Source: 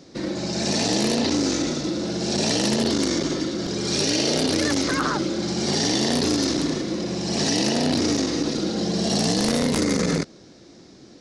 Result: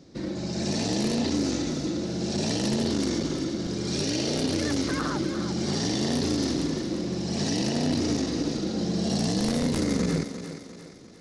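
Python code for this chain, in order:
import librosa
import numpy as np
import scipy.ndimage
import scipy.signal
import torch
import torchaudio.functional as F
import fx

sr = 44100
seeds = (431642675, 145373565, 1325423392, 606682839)

p1 = fx.low_shelf(x, sr, hz=240.0, db=9.5)
p2 = p1 + fx.echo_thinned(p1, sr, ms=350, feedback_pct=48, hz=180.0, wet_db=-9.5, dry=0)
y = p2 * 10.0 ** (-8.0 / 20.0)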